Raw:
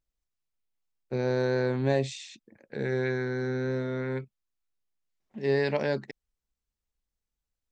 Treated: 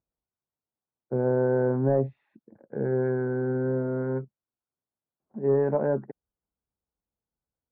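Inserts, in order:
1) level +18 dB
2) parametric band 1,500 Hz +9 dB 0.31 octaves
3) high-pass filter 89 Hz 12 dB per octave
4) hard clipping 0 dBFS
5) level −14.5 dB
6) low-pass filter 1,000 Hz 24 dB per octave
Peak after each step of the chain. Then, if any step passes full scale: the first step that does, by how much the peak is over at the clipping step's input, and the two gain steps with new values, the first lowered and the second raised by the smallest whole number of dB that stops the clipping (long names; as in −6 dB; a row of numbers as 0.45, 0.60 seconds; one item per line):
+5.5, +5.5, +4.0, 0.0, −14.5, −13.5 dBFS
step 1, 4.0 dB
step 1 +14 dB, step 5 −10.5 dB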